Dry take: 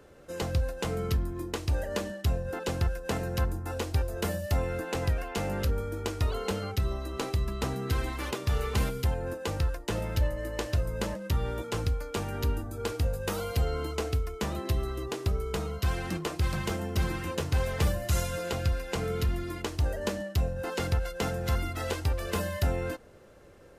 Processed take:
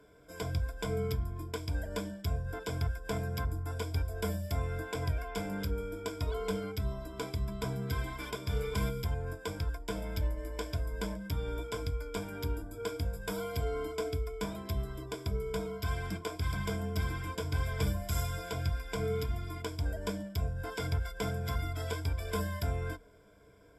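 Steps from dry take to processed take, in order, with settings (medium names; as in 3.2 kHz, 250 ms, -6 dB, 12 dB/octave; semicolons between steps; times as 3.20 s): rippled EQ curve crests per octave 1.7, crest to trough 16 dB; trim -8 dB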